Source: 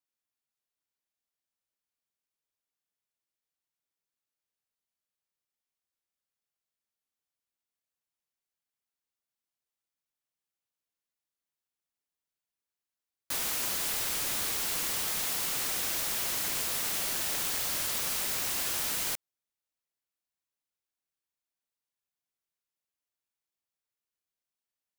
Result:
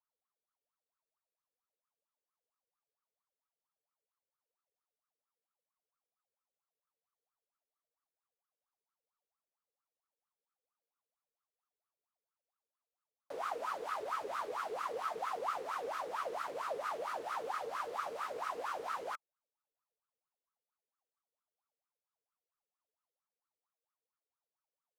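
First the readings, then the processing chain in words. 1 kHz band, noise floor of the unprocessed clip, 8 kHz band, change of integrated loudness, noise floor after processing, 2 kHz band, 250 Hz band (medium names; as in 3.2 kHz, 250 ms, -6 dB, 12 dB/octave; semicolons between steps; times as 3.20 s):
+5.0 dB, under -85 dBFS, -26.5 dB, -11.0 dB, under -85 dBFS, -8.5 dB, -10.5 dB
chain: wah-wah 4.4 Hz 440–1300 Hz, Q 14; trim +16 dB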